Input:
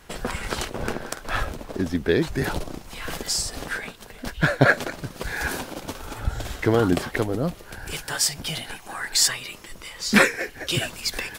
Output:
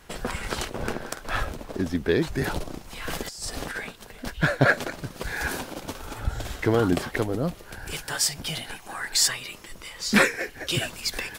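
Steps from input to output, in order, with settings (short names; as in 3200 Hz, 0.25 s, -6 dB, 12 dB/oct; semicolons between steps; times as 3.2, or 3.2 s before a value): soft clip -5 dBFS, distortion -24 dB; 3.07–3.83 negative-ratio compressor -30 dBFS, ratio -0.5; gain -1.5 dB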